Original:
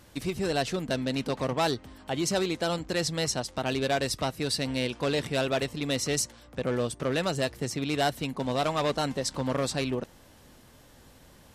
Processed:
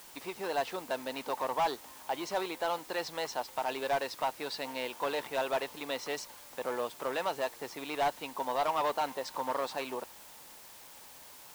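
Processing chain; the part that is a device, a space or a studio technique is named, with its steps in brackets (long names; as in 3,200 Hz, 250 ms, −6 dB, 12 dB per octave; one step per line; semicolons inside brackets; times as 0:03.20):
drive-through speaker (band-pass filter 440–3,700 Hz; parametric band 920 Hz +11 dB 0.58 octaves; hard clipping −20 dBFS, distortion −14 dB; white noise bed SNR 17 dB)
level −4.5 dB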